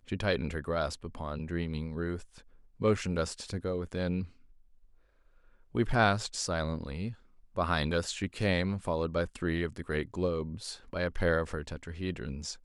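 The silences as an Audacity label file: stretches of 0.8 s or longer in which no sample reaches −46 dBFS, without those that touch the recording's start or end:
4.270000	5.750000	silence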